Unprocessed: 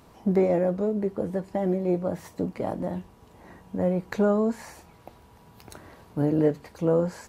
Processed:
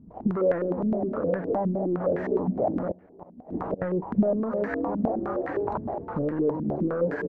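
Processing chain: backward echo that repeats 341 ms, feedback 44%, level -12.5 dB; waveshaping leveller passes 2; in parallel at +1.5 dB: gain riding within 5 dB 2 s; on the sum: frequency-shifting echo 450 ms, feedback 57%, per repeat +67 Hz, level -13 dB; 2.91–3.82 s: inverted gate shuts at -14 dBFS, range -28 dB; peak limiter -10 dBFS, peak gain reduction 8.5 dB; compression 12:1, threshold -24 dBFS, peak gain reduction 12 dB; step-sequenced low-pass 9.7 Hz 220–1700 Hz; trim -3.5 dB

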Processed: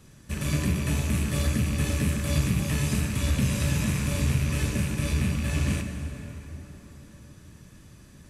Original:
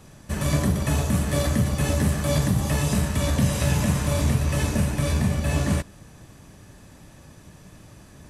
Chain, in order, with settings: rattle on loud lows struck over -24 dBFS, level -23 dBFS; peaking EQ 750 Hz -9 dB 1 oct; plate-style reverb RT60 4.3 s, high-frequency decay 0.6×, pre-delay 0 ms, DRR 5 dB; trim -4 dB

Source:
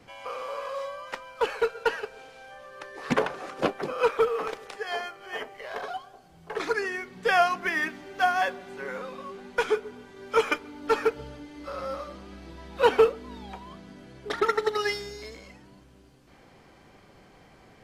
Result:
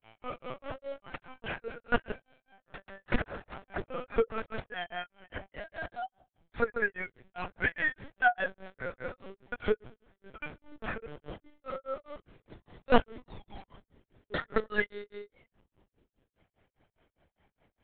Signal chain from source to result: gate -42 dBFS, range -12 dB; band-stop 1.1 kHz, Q 7.4; dynamic bell 1.6 kHz, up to +5 dB, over -46 dBFS, Q 7; granulator 181 ms, grains 4.9 per s, pitch spread up and down by 0 st; LPC vocoder at 8 kHz pitch kept

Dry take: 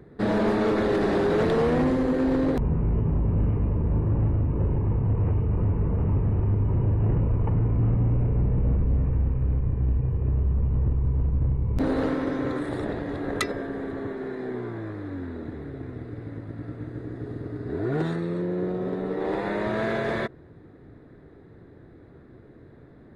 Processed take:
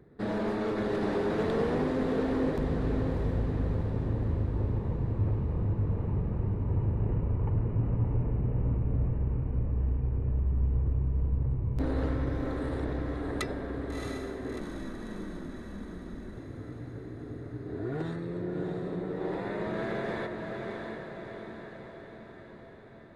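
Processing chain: echo that smears into a reverb 670 ms, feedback 59%, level -4 dB; 14.59–16.37 s: frequency shift -67 Hz; trim -8 dB

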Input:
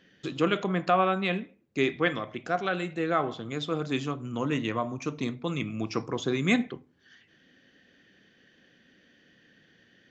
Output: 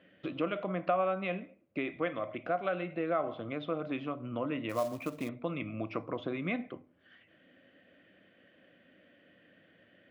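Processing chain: compression 2.5:1, threshold -33 dBFS, peak gain reduction 10.5 dB; cabinet simulation 100–2600 Hz, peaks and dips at 140 Hz -9 dB, 220 Hz -6 dB, 410 Hz -8 dB, 600 Hz +9 dB, 870 Hz -6 dB, 1.7 kHz -8 dB; 4.69–5.29 s: short-mantissa float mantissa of 2-bit; trim +2.5 dB

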